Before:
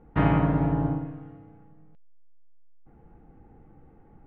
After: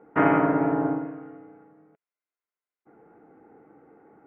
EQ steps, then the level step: speaker cabinet 290–2700 Hz, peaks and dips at 300 Hz +5 dB, 430 Hz +7 dB, 660 Hz +5 dB, 980 Hz +3 dB, 1400 Hz +9 dB, 2100 Hz +5 dB; low shelf 370 Hz +3 dB; 0.0 dB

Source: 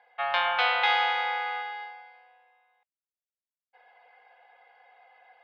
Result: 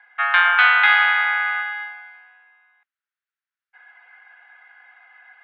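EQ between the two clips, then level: resonant high-pass 1500 Hz, resonance Q 3.3; air absorption 290 m; +8.0 dB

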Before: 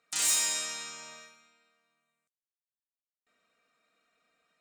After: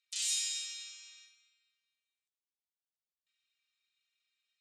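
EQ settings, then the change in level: ladder band-pass 3800 Hz, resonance 35%; high shelf 3300 Hz +10.5 dB; 0.0 dB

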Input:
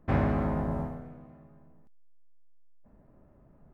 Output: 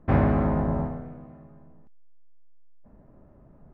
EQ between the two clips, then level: LPF 2000 Hz 6 dB/oct; +5.5 dB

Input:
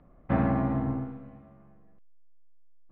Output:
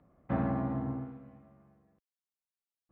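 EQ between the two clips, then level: HPF 67 Hz; dynamic EQ 2300 Hz, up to -4 dB, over -50 dBFS, Q 1.7; -5.5 dB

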